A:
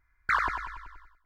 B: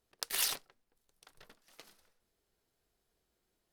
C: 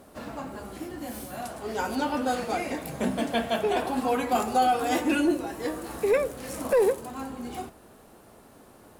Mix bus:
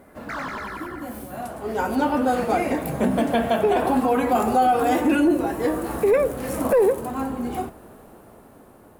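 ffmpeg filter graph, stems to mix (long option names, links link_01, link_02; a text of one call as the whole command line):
ffmpeg -i stem1.wav -i stem2.wav -i stem3.wav -filter_complex "[0:a]asplit=2[link_01][link_02];[link_02]highpass=frequency=720:poles=1,volume=34dB,asoftclip=type=tanh:threshold=-14.5dB[link_03];[link_01][link_03]amix=inputs=2:normalize=0,lowpass=frequency=1700:poles=1,volume=-6dB,volume=-10dB[link_04];[2:a]equalizer=frequency=5200:width_type=o:width=2.2:gain=-10.5,dynaudnorm=framelen=560:gausssize=7:maxgain=8dB,volume=2dB[link_05];[link_04][link_05]amix=inputs=2:normalize=0,alimiter=limit=-11.5dB:level=0:latency=1:release=82" out.wav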